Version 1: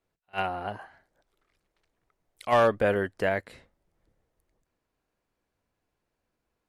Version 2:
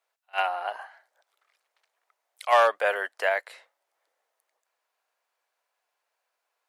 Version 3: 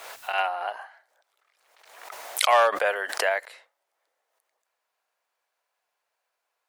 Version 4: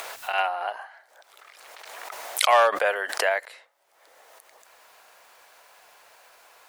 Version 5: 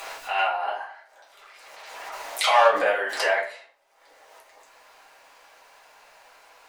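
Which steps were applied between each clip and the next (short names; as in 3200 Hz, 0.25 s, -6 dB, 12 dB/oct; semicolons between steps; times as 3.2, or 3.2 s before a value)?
HPF 630 Hz 24 dB/oct; gain +4.5 dB
backwards sustainer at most 56 dB/s
upward compressor, threshold -34 dBFS; gain +1 dB
reverb RT60 0.40 s, pre-delay 4 ms, DRR -8 dB; gain -7 dB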